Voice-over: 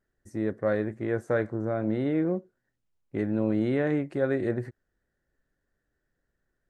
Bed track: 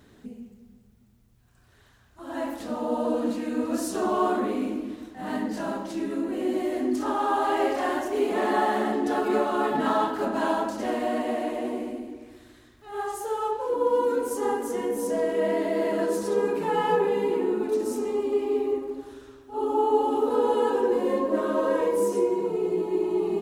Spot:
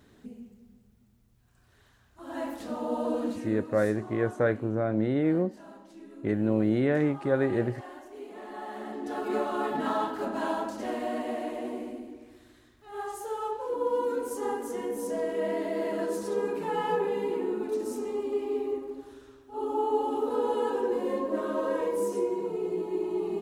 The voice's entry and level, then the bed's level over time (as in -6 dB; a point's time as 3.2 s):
3.10 s, +1.0 dB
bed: 3.24 s -3.5 dB
3.95 s -18 dB
8.5 s -18 dB
9.37 s -5 dB